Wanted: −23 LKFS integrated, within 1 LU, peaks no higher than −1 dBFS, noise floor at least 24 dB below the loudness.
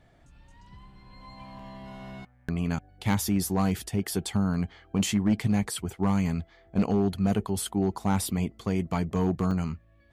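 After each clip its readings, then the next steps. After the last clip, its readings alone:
share of clipped samples 0.6%; peaks flattened at −16.5 dBFS; number of dropouts 3; longest dropout 3.1 ms; integrated loudness −28.0 LKFS; sample peak −16.5 dBFS; target loudness −23.0 LKFS
→ clipped peaks rebuilt −16.5 dBFS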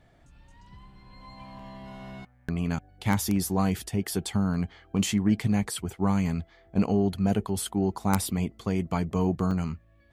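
share of clipped samples 0.0%; number of dropouts 3; longest dropout 3.1 ms
→ repair the gap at 0:01.59/0:04.54/0:09.51, 3.1 ms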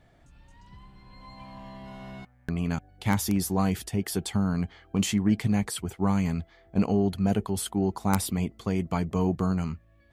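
number of dropouts 0; integrated loudness −28.0 LKFS; sample peak −7.5 dBFS; target loudness −23.0 LKFS
→ level +5 dB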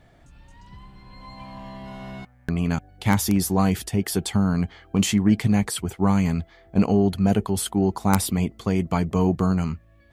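integrated loudness −23.0 LKFS; sample peak −2.5 dBFS; background noise floor −55 dBFS

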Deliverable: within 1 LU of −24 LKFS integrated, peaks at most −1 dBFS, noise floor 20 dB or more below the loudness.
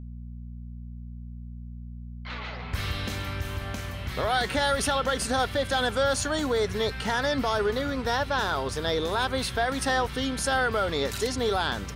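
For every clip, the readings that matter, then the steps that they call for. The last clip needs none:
mains hum 60 Hz; hum harmonics up to 240 Hz; level of the hum −36 dBFS; integrated loudness −27.0 LKFS; sample peak −13.5 dBFS; target loudness −24.0 LKFS
→ hum removal 60 Hz, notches 4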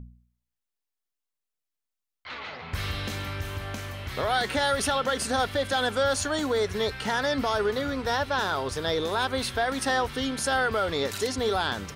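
mains hum none found; integrated loudness −27.0 LKFS; sample peak −13.5 dBFS; target loudness −24.0 LKFS
→ level +3 dB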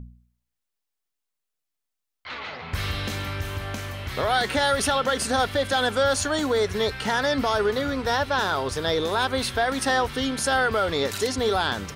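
integrated loudness −24.0 LKFS; sample peak −10.5 dBFS; background noise floor −82 dBFS

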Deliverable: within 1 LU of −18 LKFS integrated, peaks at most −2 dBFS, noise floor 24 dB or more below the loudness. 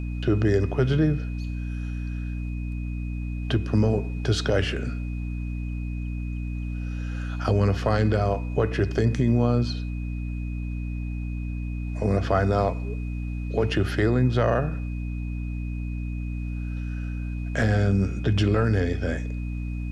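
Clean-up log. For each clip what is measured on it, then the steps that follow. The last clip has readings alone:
mains hum 60 Hz; hum harmonics up to 300 Hz; level of the hum −27 dBFS; interfering tone 2,500 Hz; level of the tone −47 dBFS; integrated loudness −26.5 LKFS; sample peak −10.5 dBFS; target loudness −18.0 LKFS
→ mains-hum notches 60/120/180/240/300 Hz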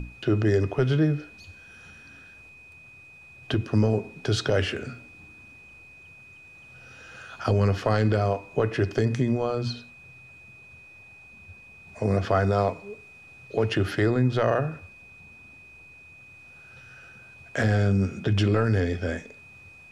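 mains hum none found; interfering tone 2,500 Hz; level of the tone −47 dBFS
→ notch filter 2,500 Hz, Q 30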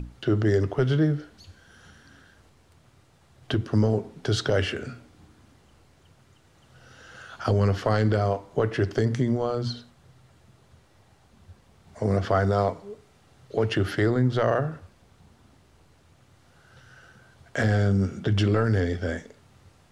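interfering tone none found; integrated loudness −25.0 LKFS; sample peak −11.0 dBFS; target loudness −18.0 LKFS
→ level +7 dB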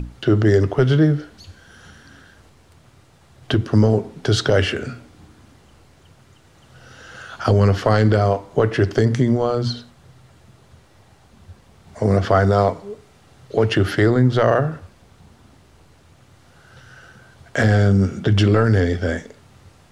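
integrated loudness −18.0 LKFS; sample peak −4.0 dBFS; background noise floor −52 dBFS

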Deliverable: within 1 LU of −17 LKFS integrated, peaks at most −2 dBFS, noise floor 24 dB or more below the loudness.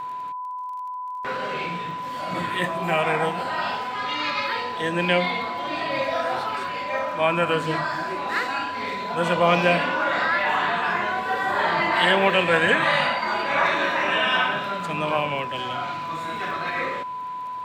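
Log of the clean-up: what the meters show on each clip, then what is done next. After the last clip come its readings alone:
crackle rate 23 per second; interfering tone 1,000 Hz; level of the tone −29 dBFS; integrated loudness −23.5 LKFS; sample peak −6.0 dBFS; target loudness −17.0 LKFS
→ click removal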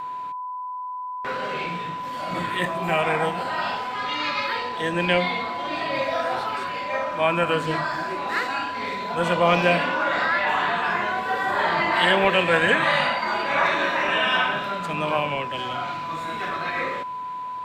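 crackle rate 0.057 per second; interfering tone 1,000 Hz; level of the tone −29 dBFS
→ notch filter 1,000 Hz, Q 30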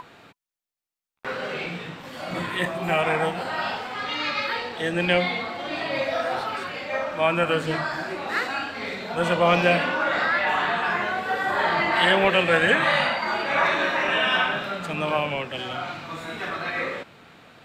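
interfering tone none found; integrated loudness −23.5 LKFS; sample peak −6.5 dBFS; target loudness −17.0 LKFS
→ level +6.5 dB
brickwall limiter −2 dBFS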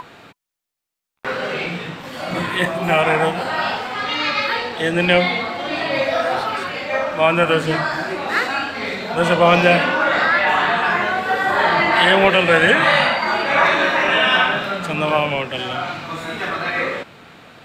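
integrated loudness −17.5 LKFS; sample peak −2.0 dBFS; background noise floor −64 dBFS

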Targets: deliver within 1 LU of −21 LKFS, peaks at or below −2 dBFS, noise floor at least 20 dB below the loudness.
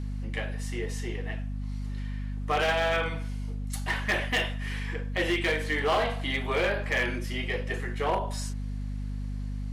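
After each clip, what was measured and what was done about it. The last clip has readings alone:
share of clipped samples 0.9%; peaks flattened at −20.5 dBFS; mains hum 50 Hz; hum harmonics up to 250 Hz; level of the hum −31 dBFS; integrated loudness −30.0 LKFS; sample peak −20.5 dBFS; target loudness −21.0 LKFS
→ clipped peaks rebuilt −20.5 dBFS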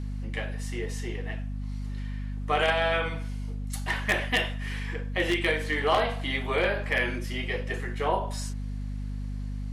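share of clipped samples 0.0%; mains hum 50 Hz; hum harmonics up to 250 Hz; level of the hum −31 dBFS
→ hum removal 50 Hz, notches 5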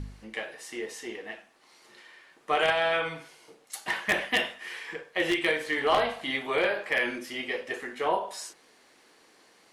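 mains hum none found; integrated loudness −29.0 LKFS; sample peak −10.5 dBFS; target loudness −21.0 LKFS
→ level +8 dB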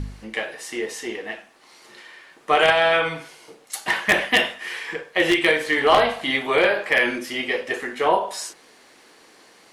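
integrated loudness −21.0 LKFS; sample peak −2.5 dBFS; background noise floor −52 dBFS

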